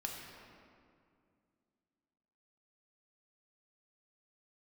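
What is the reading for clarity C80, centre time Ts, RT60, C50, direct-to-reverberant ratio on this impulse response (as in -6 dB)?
3.0 dB, 93 ms, 2.3 s, 2.0 dB, -0.5 dB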